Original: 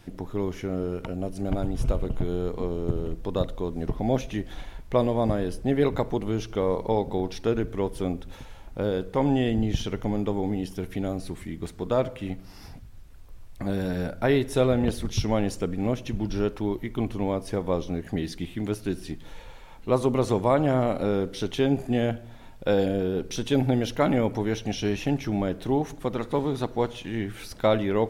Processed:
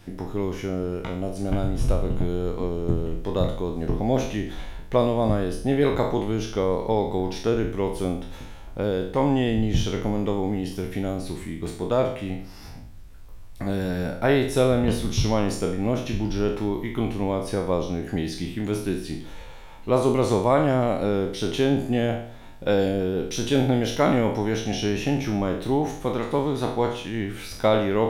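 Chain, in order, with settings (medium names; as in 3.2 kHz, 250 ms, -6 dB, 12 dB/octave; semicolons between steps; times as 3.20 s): spectral sustain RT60 0.57 s; trim +1 dB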